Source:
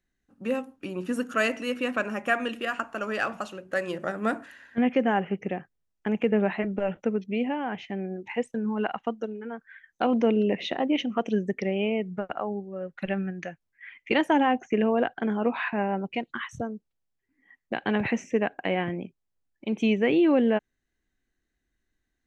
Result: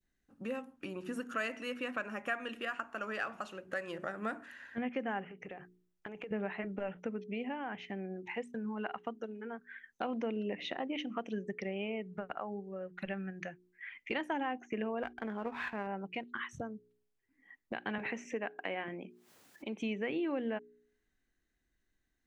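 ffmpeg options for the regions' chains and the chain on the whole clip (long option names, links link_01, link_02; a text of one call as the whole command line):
ffmpeg -i in.wav -filter_complex "[0:a]asettb=1/sr,asplit=3[link_01][link_02][link_03];[link_01]atrim=end=5.264[link_04];[link_02]atrim=start=5.26:end=6.31,asetpts=PTS-STARTPTS,afade=type=in:duration=0.004:curve=qsin,afade=type=out:start_time=1.046:duration=0.004:curve=qsin,equalizer=frequency=230:width=3.5:gain=-12,acompressor=threshold=-36dB:ratio=6:attack=3.2:release=140:knee=1:detection=peak[link_05];[link_03]atrim=start=6.306[link_06];[link_04][link_05]acrossfade=duration=0.004:curve1=hsin:curve2=qsin[link_07];[link_07][link_06]acrossfade=duration=0.004:curve1=qsin:curve2=hsin,asettb=1/sr,asplit=3[link_08][link_09][link_10];[link_08]atrim=end=15.034[link_11];[link_09]atrim=start=15.03:end=15.87,asetpts=PTS-STARTPTS,afade=type=in:duration=0.004:curve=qsin,afade=type=out:start_time=0.836:duration=0.004:curve=qsin,aeval=exprs='if(lt(val(0),0),0.447*val(0),val(0))':channel_layout=same,highpass=47,agate=range=-13dB:threshold=-47dB:ratio=16:release=100:detection=peak[link_12];[link_10]atrim=start=15.866[link_13];[link_11][link_12]acrossfade=duration=0.004:curve1=hsin:curve2=qsin[link_14];[link_14][link_13]acrossfade=duration=0.004:curve1=qsin:curve2=hsin,asettb=1/sr,asplit=3[link_15][link_16][link_17];[link_15]atrim=end=17.984[link_18];[link_16]atrim=start=17.98:end=19.82,asetpts=PTS-STARTPTS,afade=type=in:duration=0.004:curve=qsin,afade=type=out:start_time=1.836:duration=0.004:curve=qsin,highpass=230,acompressor=mode=upward:threshold=-36dB:ratio=2.5:attack=3.2:release=140:knee=2.83:detection=peak[link_19];[link_17]atrim=start=19.816[link_20];[link_18][link_19]acrossfade=duration=0.004:curve1=hsin:curve2=qsin[link_21];[link_21][link_20]acrossfade=duration=0.004:curve1=qsin:curve2=hsin,bandreject=frequency=60.15:width_type=h:width=4,bandreject=frequency=120.3:width_type=h:width=4,bandreject=frequency=180.45:width_type=h:width=4,bandreject=frequency=240.6:width_type=h:width=4,bandreject=frequency=300.75:width_type=h:width=4,bandreject=frequency=360.9:width_type=h:width=4,bandreject=frequency=421.05:width_type=h:width=4,adynamicequalizer=threshold=0.0112:dfrequency=1600:dqfactor=0.75:tfrequency=1600:tqfactor=0.75:attack=5:release=100:ratio=0.375:range=2.5:mode=boostabove:tftype=bell,acompressor=threshold=-41dB:ratio=2,volume=-2dB" out.wav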